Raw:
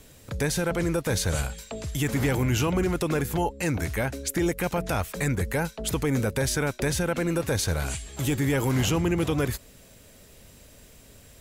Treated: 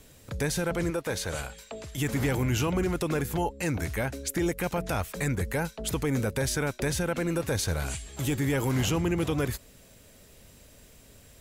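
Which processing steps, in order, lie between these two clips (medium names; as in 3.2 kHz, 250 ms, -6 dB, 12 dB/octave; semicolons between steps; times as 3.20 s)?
0.90–1.98 s: tone controls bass -8 dB, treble -4 dB; trim -2.5 dB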